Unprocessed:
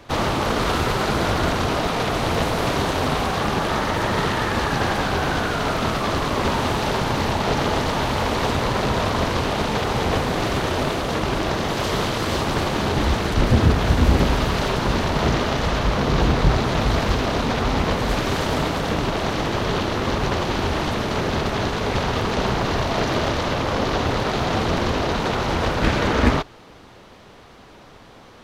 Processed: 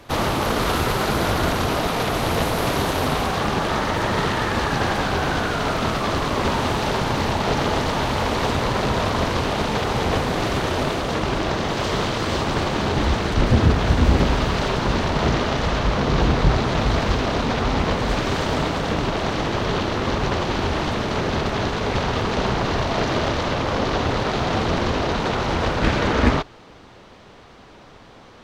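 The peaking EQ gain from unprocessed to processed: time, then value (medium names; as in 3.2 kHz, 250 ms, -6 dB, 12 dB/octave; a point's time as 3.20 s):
peaking EQ 12 kHz 0.51 oct
3.02 s +8.5 dB
3.51 s -3 dB
10.79 s -3 dB
11.52 s -12.5 dB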